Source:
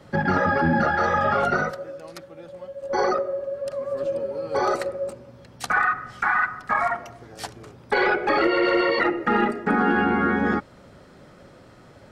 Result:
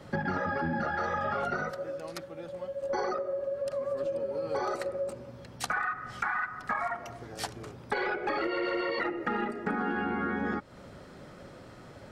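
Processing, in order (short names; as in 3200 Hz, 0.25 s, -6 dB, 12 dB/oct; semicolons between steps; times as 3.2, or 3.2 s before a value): compressor 4:1, threshold -30 dBFS, peak gain reduction 12 dB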